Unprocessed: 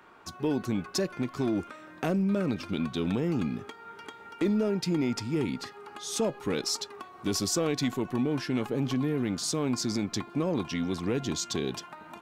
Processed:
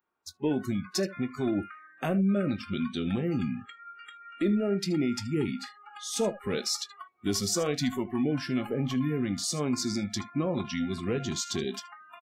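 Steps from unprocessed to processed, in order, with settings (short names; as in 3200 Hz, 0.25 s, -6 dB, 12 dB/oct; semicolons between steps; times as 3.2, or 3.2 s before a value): early reflections 20 ms -14 dB, 78 ms -14.5 dB; spectral noise reduction 29 dB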